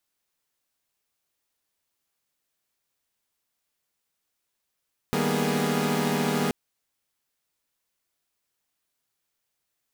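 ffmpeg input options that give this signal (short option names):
-f lavfi -i "aevalsrc='0.0447*((2*mod(155.56*t,1)-1)+(2*mod(196*t,1)-1)+(2*mod(233.08*t,1)-1)+(2*mod(246.94*t,1)-1)+(2*mod(415.3*t,1)-1))':d=1.38:s=44100"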